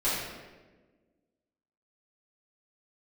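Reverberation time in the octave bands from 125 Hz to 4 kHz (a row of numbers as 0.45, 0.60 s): 1.5, 1.9, 1.5, 1.1, 1.1, 0.85 s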